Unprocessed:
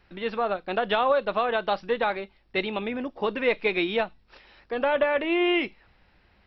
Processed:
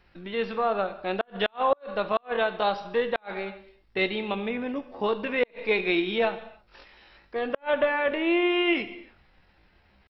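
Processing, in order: tempo 0.64×; non-linear reverb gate 0.34 s falling, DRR 10.5 dB; flipped gate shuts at -12 dBFS, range -39 dB

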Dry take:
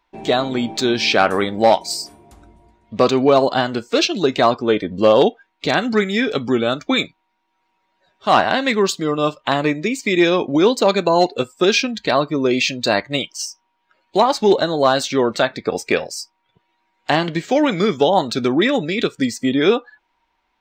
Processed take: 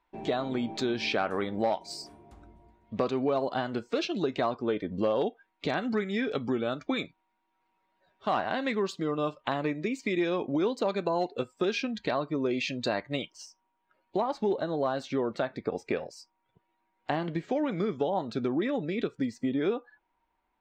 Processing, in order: LPF 2200 Hz 6 dB/oct, from 13.3 s 1100 Hz; compressor 2.5:1, threshold -22 dBFS, peak gain reduction 9 dB; gain -6 dB

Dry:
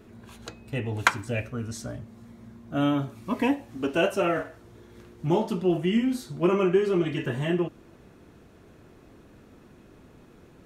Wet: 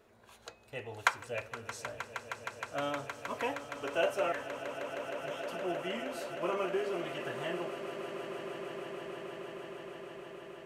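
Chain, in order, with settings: 4.32–5.53 brick-wall FIR band-stop 150–1500 Hz; resonant low shelf 380 Hz -11 dB, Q 1.5; swelling echo 0.156 s, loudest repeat 8, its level -14 dB; gain -7.5 dB

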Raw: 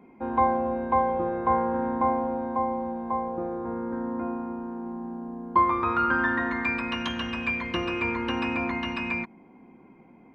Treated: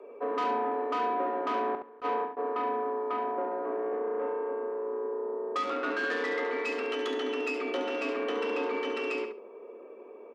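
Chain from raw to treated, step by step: added harmonics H 3 -8 dB, 5 -13 dB, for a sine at -9.5 dBFS; low shelf 440 Hz +11.5 dB; in parallel at -2.5 dB: compressor 6:1, threshold -26 dBFS, peak gain reduction 8.5 dB; on the sum: soft clip -18 dBFS, distortion -16 dB; frequency shift +200 Hz; 1.75–2.37 gate with hold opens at -14 dBFS; feedback echo 70 ms, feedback 17%, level -7.5 dB; attack slew limiter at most 440 dB/s; gain -7 dB

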